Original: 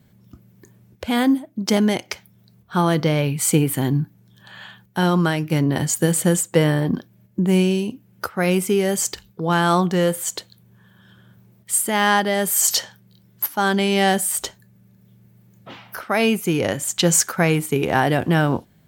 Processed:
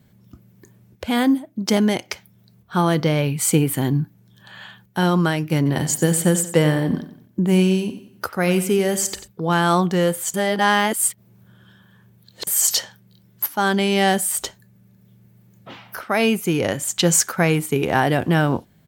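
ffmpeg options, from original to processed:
ffmpeg -i in.wav -filter_complex "[0:a]asplit=3[link_01][link_02][link_03];[link_01]afade=type=out:start_time=5.65:duration=0.02[link_04];[link_02]aecho=1:1:91|182|273|364:0.224|0.0873|0.0341|0.0133,afade=type=in:start_time=5.65:duration=0.02,afade=type=out:start_time=9.26:duration=0.02[link_05];[link_03]afade=type=in:start_time=9.26:duration=0.02[link_06];[link_04][link_05][link_06]amix=inputs=3:normalize=0,asplit=3[link_07][link_08][link_09];[link_07]atrim=end=10.342[link_10];[link_08]atrim=start=10.338:end=12.472,asetpts=PTS-STARTPTS,areverse[link_11];[link_09]atrim=start=12.468[link_12];[link_10][link_11]acrossfade=duration=0.004:curve1=hsin:curve2=hsin[link_13];[link_13][link_12]acrossfade=duration=0.004:curve1=hsin:curve2=hsin" out.wav

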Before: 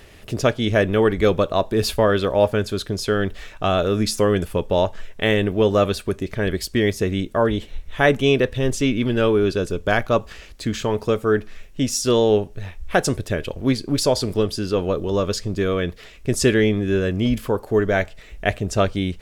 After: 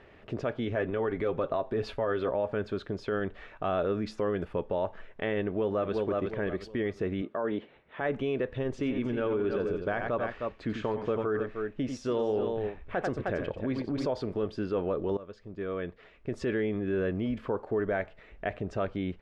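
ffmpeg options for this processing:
ffmpeg -i in.wav -filter_complex "[0:a]asettb=1/sr,asplit=3[link_01][link_02][link_03];[link_01]atrim=end=0.654[link_04];[link_02]atrim=start=0.65:end=2.31,asetpts=PTS-STARTPTS,afade=type=in:duration=0.004:curve=qsin,afade=type=out:start_time=1.656:duration=0.004:curve=qsin,aecho=1:1:7.5:0.42,atrim=end_sample=73206[link_05];[link_03]atrim=start=2.306[link_06];[link_04][link_05]acrossfade=duration=0.004:curve1=hsin:curve2=qsin[link_07];[link_07][link_06]acrossfade=duration=0.004:curve1=qsin:curve2=hsin,asplit=2[link_08][link_09];[link_09]afade=type=in:start_time=5.45:duration=0.01,afade=type=out:start_time=5.94:duration=0.01,aecho=0:1:360|720|1080|1440:0.446684|0.134005|0.0402015|0.0120605[link_10];[link_08][link_10]amix=inputs=2:normalize=0,asettb=1/sr,asplit=3[link_11][link_12][link_13];[link_11]atrim=end=7.224[link_14];[link_12]atrim=start=7.22:end=8.01,asetpts=PTS-STARTPTS,afade=type=in:duration=0.004:curve=qsin,afade=type=out:start_time=0.786:duration=0.004:curve=qsin,highpass=180,lowpass=3700[link_15];[link_13]atrim=start=8.006[link_16];[link_14][link_15]acrossfade=duration=0.004:curve1=hsin:curve2=qsin[link_17];[link_17][link_16]acrossfade=duration=0.004:curve1=qsin:curve2=hsin,asplit=3[link_18][link_19][link_20];[link_18]afade=type=out:start_time=8.78:duration=0.02[link_21];[link_19]aecho=1:1:91|309:0.335|0.299,afade=type=in:start_time=8.78:duration=0.02,afade=type=out:start_time=14.05:duration=0.02[link_22];[link_20]afade=type=in:start_time=14.05:duration=0.02[link_23];[link_21][link_22][link_23]amix=inputs=3:normalize=0,asplit=2[link_24][link_25];[link_24]atrim=end=15.17,asetpts=PTS-STARTPTS,afade=type=out:start_time=15.166:duration=0.004:curve=hsin:silence=0.1[link_26];[link_25]atrim=start=15.17,asetpts=PTS-STARTPTS,afade=type=in:duration=1.41:silence=0.1[link_27];[link_26][link_27]concat=n=2:v=0:a=1,lowpass=1800,alimiter=limit=-16dB:level=0:latency=1:release=68,lowshelf=frequency=130:gain=-11.5,volume=-4dB" out.wav

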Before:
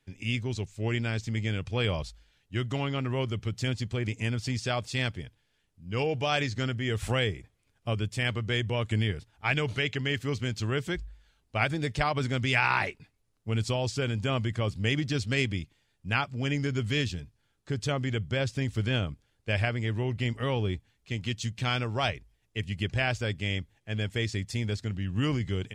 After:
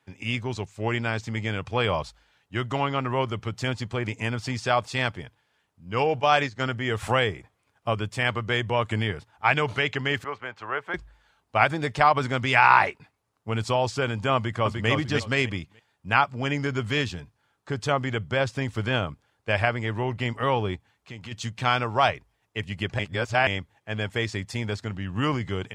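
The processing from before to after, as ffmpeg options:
ffmpeg -i in.wav -filter_complex "[0:a]asettb=1/sr,asplit=3[link_01][link_02][link_03];[link_01]atrim=end=6.204[link_04];[link_02]atrim=start=6.2:end=6.68,asetpts=PTS-STARTPTS,afade=type=in:duration=0.004:curve=qsin,afade=type=out:start_time=0.476:duration=0.004:curve=qsin,agate=range=-10dB:threshold=-31dB:ratio=16:release=100:detection=peak[link_05];[link_03]atrim=start=6.676[link_06];[link_04][link_05]acrossfade=duration=0.004:curve1=hsin:curve2=qsin[link_07];[link_07][link_06]acrossfade=duration=0.004:curve1=qsin:curve2=hsin,asettb=1/sr,asplit=3[link_08][link_09][link_10];[link_08]atrim=end=10.244[link_11];[link_09]atrim=start=10.24:end=10.94,asetpts=PTS-STARTPTS,afade=type=in:duration=0.004:curve=qsin,afade=type=out:start_time=0.696:duration=0.004:curve=qsin,acrossover=split=490 2400:gain=0.112 1 0.0794[link_12][link_13][link_14];[link_12][link_13][link_14]amix=inputs=3:normalize=0[link_15];[link_10]atrim=start=10.936[link_16];[link_11][link_15]acrossfade=duration=0.004:curve1=hsin:curve2=qsin[link_17];[link_17][link_16]acrossfade=duration=0.004:curve1=qsin:curve2=hsin,asplit=2[link_18][link_19];[link_19]afade=type=in:start_time=14.35:duration=0.01,afade=type=out:start_time=14.89:duration=0.01,aecho=0:1:300|600|900:0.668344|0.133669|0.0267338[link_20];[link_18][link_20]amix=inputs=2:normalize=0,asplit=3[link_21][link_22][link_23];[link_21]afade=type=out:start_time=20.75:duration=0.02[link_24];[link_22]acompressor=threshold=-39dB:ratio=3:attack=3.2:release=140:knee=1:detection=peak,afade=type=in:start_time=20.75:duration=0.02,afade=type=out:start_time=21.31:duration=0.02[link_25];[link_23]afade=type=in:start_time=21.31:duration=0.02[link_26];[link_24][link_25][link_26]amix=inputs=3:normalize=0,asplit=3[link_27][link_28][link_29];[link_27]atrim=end=22.992[link_30];[link_28]atrim=start=22.988:end=23.472,asetpts=PTS-STARTPTS,areverse[link_31];[link_29]atrim=start=23.468[link_32];[link_30][link_31]acrossfade=duration=0.004:curve1=hsin:curve2=hsin[link_33];[link_33][link_32]acrossfade=duration=0.004:curve1=hsin:curve2=hsin,highpass=76,equalizer=frequency=980:width_type=o:width=1.7:gain=12.5" out.wav

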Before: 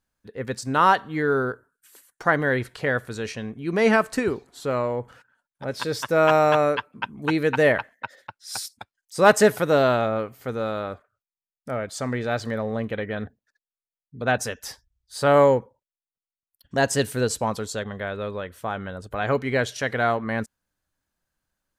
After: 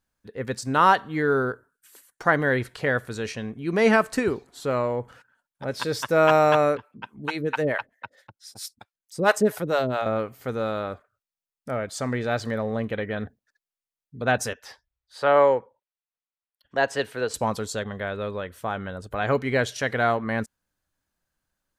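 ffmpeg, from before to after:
ffmpeg -i in.wav -filter_complex "[0:a]asettb=1/sr,asplit=3[link_01][link_02][link_03];[link_01]atrim=end=6.774[link_04];[link_02]atrim=start=6.77:end=10.06,asetpts=PTS-STARTPTS,afade=type=in:duration=0.004:curve=qsin,afade=type=out:start_time=3.286:duration=0.004:curve=qsin,acrossover=split=490[link_05][link_06];[link_05]aeval=exprs='val(0)*(1-1/2+1/2*cos(2*PI*4.5*n/s))':channel_layout=same[link_07];[link_06]aeval=exprs='val(0)*(1-1/2-1/2*cos(2*PI*4.5*n/s))':channel_layout=same[link_08];[link_07][link_08]amix=inputs=2:normalize=0[link_09];[link_03]atrim=start=10.056[link_10];[link_04][link_09]acrossfade=duration=0.004:curve1=hsin:curve2=qsin[link_11];[link_11][link_10]acrossfade=duration=0.004:curve1=qsin:curve2=hsin,asettb=1/sr,asplit=3[link_12][link_13][link_14];[link_12]atrim=end=14.534[link_15];[link_13]atrim=start=14.53:end=17.34,asetpts=PTS-STARTPTS,afade=type=in:duration=0.004:curve=qsin,afade=type=out:start_time=2.806:duration=0.004:curve=qsin,acrossover=split=390 3900:gain=0.224 1 0.158[link_16][link_17][link_18];[link_16][link_17][link_18]amix=inputs=3:normalize=0[link_19];[link_14]atrim=start=17.336[link_20];[link_15][link_19]acrossfade=duration=0.004:curve1=hsin:curve2=qsin[link_21];[link_21][link_20]acrossfade=duration=0.004:curve1=qsin:curve2=hsin" out.wav

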